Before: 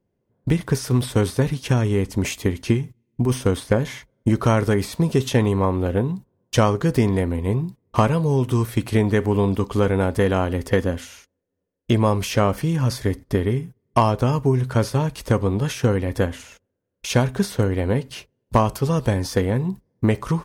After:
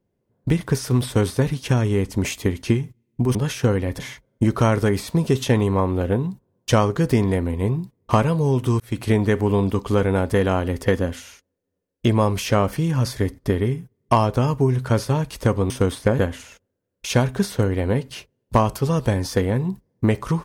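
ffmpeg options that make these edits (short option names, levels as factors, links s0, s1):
-filter_complex "[0:a]asplit=6[s0][s1][s2][s3][s4][s5];[s0]atrim=end=3.352[s6];[s1]atrim=start=15.548:end=16.192[s7];[s2]atrim=start=3.838:end=8.65,asetpts=PTS-STARTPTS,afade=t=out:st=4.808:d=0.004:c=hsin[s8];[s3]atrim=start=8.65:end=15.552,asetpts=PTS-STARTPTS,afade=t=in:d=0.31:c=qsin[s9];[s4]atrim=start=3.348:end=3.842[s10];[s5]atrim=start=16.188[s11];[s6][s7]acrossfade=d=0.004:c1=hsin:c2=hsin[s12];[s8][s9]concat=n=2:v=0:a=1[s13];[s12][s13]acrossfade=d=0.004:c1=hsin:c2=hsin[s14];[s14][s10]acrossfade=d=0.004:c1=hsin:c2=hsin[s15];[s15][s11]acrossfade=d=0.004:c1=hsin:c2=hsin"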